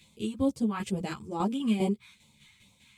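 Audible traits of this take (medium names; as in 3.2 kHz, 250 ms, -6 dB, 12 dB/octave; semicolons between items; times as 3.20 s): phasing stages 2, 2.3 Hz, lowest notch 550–1600 Hz; tremolo saw down 5 Hz, depth 60%; a shimmering, thickened sound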